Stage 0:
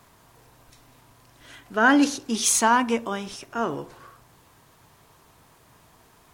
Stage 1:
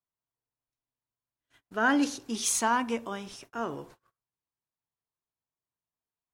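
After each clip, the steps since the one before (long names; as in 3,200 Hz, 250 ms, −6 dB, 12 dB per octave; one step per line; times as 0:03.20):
noise gate −43 dBFS, range −36 dB
level −7 dB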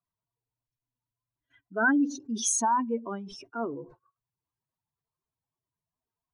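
expanding power law on the bin magnitudes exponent 2.4
level +1.5 dB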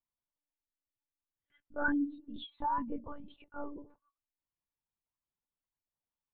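one-pitch LPC vocoder at 8 kHz 290 Hz
level −7.5 dB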